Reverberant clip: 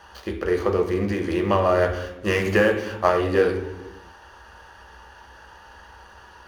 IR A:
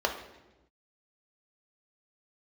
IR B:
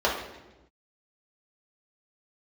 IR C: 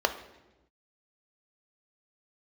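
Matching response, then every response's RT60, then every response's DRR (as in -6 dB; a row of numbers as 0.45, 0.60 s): A; 1.1, 1.1, 1.1 s; 2.5, -4.0, 7.0 dB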